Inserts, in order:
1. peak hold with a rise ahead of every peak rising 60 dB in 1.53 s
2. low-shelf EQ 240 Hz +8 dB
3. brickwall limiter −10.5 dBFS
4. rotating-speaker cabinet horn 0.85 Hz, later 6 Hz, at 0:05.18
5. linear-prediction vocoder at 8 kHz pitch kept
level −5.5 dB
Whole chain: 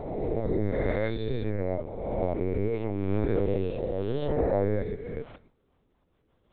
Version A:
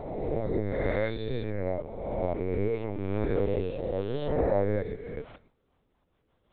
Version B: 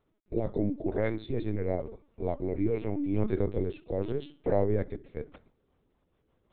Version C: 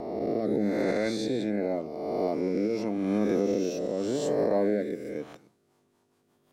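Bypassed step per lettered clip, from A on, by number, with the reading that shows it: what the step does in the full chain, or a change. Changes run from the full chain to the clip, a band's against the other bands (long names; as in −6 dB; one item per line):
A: 2, 250 Hz band −2.5 dB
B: 1, 250 Hz band +3.0 dB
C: 5, 125 Hz band −9.0 dB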